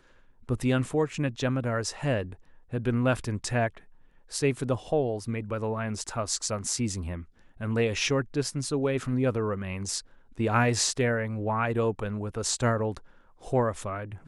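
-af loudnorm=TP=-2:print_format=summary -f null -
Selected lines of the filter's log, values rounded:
Input Integrated:    -28.8 LUFS
Input True Peak:     -10.4 dBTP
Input LRA:             2.3 LU
Input Threshold:     -39.2 LUFS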